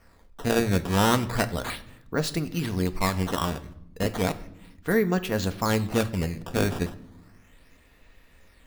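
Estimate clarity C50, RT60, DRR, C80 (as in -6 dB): 16.5 dB, 0.80 s, 9.0 dB, 19.0 dB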